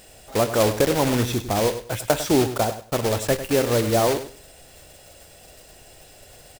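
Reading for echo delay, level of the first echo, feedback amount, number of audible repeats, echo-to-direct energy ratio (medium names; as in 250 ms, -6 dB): 100 ms, -12.0 dB, 20%, 2, -12.0 dB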